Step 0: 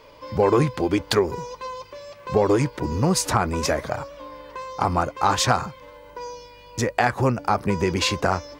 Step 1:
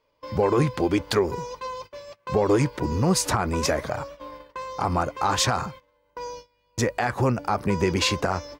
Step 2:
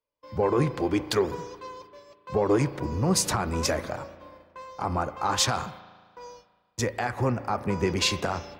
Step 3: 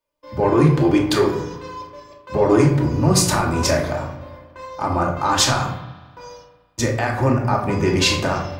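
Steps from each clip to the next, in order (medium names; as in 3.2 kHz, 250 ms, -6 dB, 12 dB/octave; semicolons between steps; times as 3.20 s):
gate -39 dBFS, range -22 dB; peak limiter -11 dBFS, peak gain reduction 8 dB
spring tank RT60 2.8 s, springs 36 ms, chirp 60 ms, DRR 12.5 dB; three bands expanded up and down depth 40%; trim -3.5 dB
simulated room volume 880 m³, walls furnished, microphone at 2.6 m; trim +4.5 dB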